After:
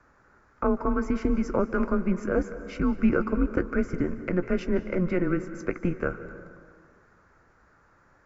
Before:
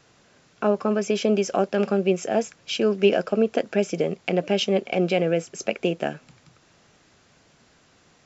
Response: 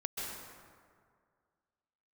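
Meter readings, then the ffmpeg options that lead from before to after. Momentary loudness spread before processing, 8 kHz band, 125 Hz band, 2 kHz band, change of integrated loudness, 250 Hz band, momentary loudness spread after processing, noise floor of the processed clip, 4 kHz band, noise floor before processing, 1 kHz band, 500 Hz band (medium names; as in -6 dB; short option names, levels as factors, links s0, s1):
6 LU, no reading, -1.0 dB, -2.5 dB, -4.0 dB, 0.0 dB, 7 LU, -61 dBFS, under -20 dB, -59 dBFS, -4.0 dB, -7.0 dB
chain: -filter_complex "[0:a]highshelf=f=2400:t=q:w=3:g=-11.5,afreqshift=-180,asplit=2[s0][s1];[1:a]atrim=start_sample=2205,adelay=17[s2];[s1][s2]afir=irnorm=-1:irlink=0,volume=0.224[s3];[s0][s3]amix=inputs=2:normalize=0,volume=0.668"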